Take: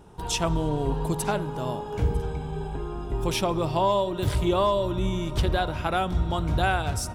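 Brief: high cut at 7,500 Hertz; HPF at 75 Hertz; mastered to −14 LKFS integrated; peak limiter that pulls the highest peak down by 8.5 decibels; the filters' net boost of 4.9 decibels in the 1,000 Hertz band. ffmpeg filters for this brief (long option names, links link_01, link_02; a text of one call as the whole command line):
ffmpeg -i in.wav -af "highpass=75,lowpass=7500,equalizer=frequency=1000:width_type=o:gain=6,volume=13.5dB,alimiter=limit=-2.5dB:level=0:latency=1" out.wav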